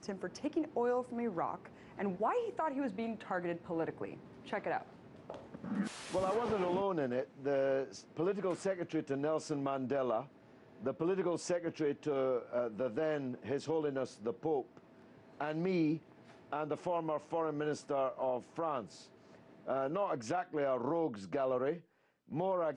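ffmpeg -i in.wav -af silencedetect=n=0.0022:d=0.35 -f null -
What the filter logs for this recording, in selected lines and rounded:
silence_start: 21.81
silence_end: 22.29 | silence_duration: 0.48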